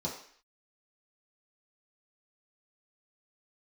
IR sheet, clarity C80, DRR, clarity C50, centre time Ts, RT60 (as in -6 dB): 9.5 dB, -5.5 dB, 6.0 dB, 31 ms, 0.55 s